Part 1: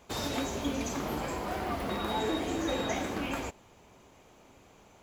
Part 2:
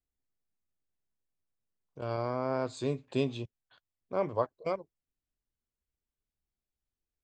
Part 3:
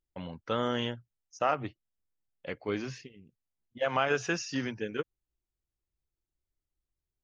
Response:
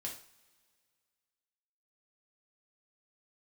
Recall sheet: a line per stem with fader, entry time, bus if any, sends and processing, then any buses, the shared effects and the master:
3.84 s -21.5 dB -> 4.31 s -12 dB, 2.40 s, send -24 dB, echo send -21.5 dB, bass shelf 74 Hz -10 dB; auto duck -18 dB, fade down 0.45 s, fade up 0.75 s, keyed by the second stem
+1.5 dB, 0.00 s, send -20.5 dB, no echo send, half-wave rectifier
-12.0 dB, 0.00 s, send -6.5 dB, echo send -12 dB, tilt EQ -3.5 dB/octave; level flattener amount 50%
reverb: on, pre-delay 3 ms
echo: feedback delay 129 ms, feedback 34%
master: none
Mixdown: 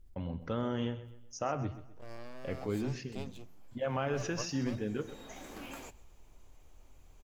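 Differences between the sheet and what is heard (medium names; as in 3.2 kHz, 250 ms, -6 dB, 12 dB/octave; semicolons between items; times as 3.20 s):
stem 2 +1.5 dB -> -9.5 dB; master: extra treble shelf 5.9 kHz +10 dB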